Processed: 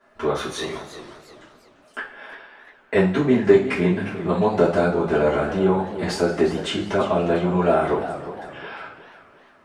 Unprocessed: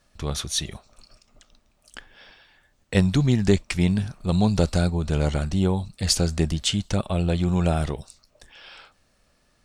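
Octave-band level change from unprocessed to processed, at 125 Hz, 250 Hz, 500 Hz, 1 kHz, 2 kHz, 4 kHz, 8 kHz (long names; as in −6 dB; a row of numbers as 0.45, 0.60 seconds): −5.0 dB, +1.5 dB, +9.5 dB, +9.0 dB, +7.0 dB, −4.5 dB, can't be measured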